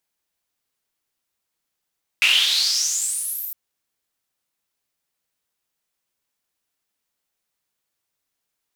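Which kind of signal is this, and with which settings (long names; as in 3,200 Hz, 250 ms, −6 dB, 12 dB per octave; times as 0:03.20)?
filter sweep on noise white, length 1.31 s bandpass, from 2,500 Hz, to 15,000 Hz, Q 7.1, exponential, gain ramp −19 dB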